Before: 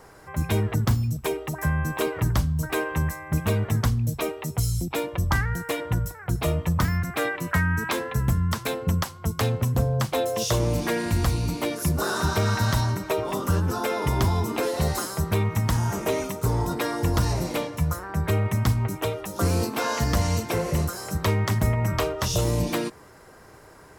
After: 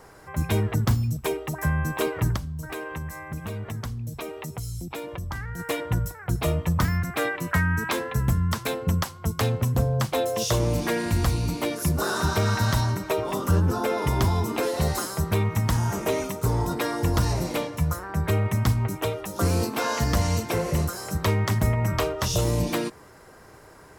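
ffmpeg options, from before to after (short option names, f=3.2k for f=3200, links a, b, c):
-filter_complex "[0:a]asplit=3[a][b][c];[a]afade=t=out:st=2.35:d=0.02[d];[b]acompressor=threshold=-32dB:ratio=3:attack=3.2:release=140:knee=1:detection=peak,afade=t=in:st=2.35:d=0.02,afade=t=out:st=5.58:d=0.02[e];[c]afade=t=in:st=5.58:d=0.02[f];[d][e][f]amix=inputs=3:normalize=0,asettb=1/sr,asplit=3[g][h][i];[g]atrim=end=13.514[j];[h]atrim=start=13.51:end=13.98,asetpts=PTS-STARTPTS,afade=t=in:d=0.004:c=qsin,afade=t=out:st=0.466:d=0.004:c=qsin,tiltshelf=f=970:g=3[k];[i]atrim=start=13.976[l];[j][k]acrossfade=d=0.004:c1=hsin:c2=qsin[m];[m][l]acrossfade=d=0.004:c1=qsin:c2=hsin"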